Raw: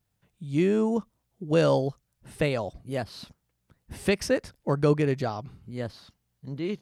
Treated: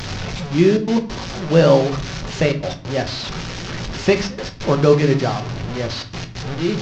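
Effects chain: one-bit delta coder 32 kbps, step -29.5 dBFS; trance gate "xxxxxxx.x.xxxxxx" 137 bpm -24 dB; reverberation RT60 0.45 s, pre-delay 5 ms, DRR 5.5 dB; trim +7.5 dB

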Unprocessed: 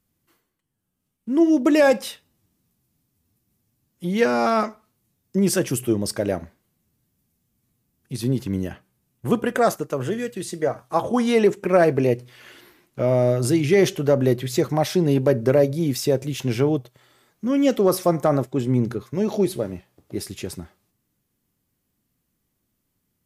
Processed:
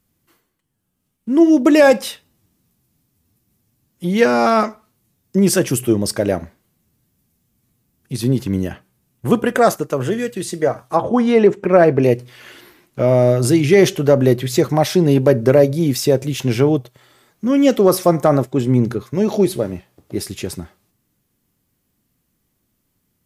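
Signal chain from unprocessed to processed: 10.95–12.02 s: low-pass 1.5 kHz -> 2.6 kHz 6 dB/octave; trim +5.5 dB

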